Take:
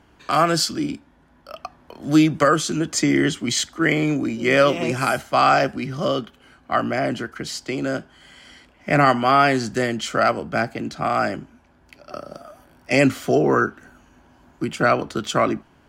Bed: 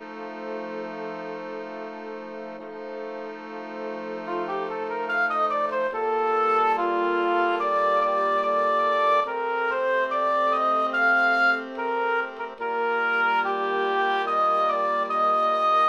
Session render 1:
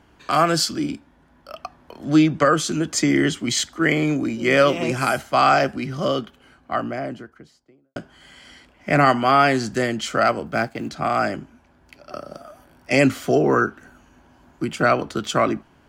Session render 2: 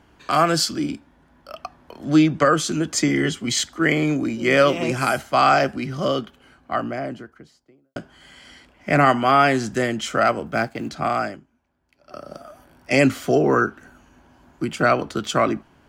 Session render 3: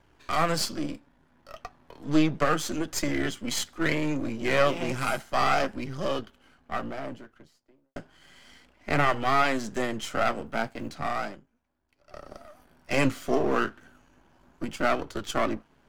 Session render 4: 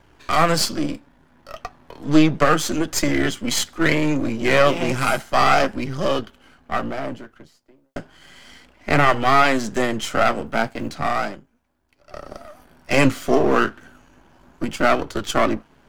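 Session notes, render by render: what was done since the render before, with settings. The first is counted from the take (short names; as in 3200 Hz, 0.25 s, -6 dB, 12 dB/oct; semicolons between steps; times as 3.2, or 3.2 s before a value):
2.04–2.57 air absorption 65 m; 6.19–7.96 studio fade out; 10.46–10.89 G.711 law mismatch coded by A
3.08–3.5 notch comb 310 Hz; 8.97–10.57 notch 4500 Hz, Q 9.7; 11.09–12.31 dip -16 dB, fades 0.34 s
half-wave gain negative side -12 dB; flange 0.33 Hz, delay 1.8 ms, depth 7.3 ms, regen -57%
gain +8 dB; limiter -2 dBFS, peak gain reduction 2 dB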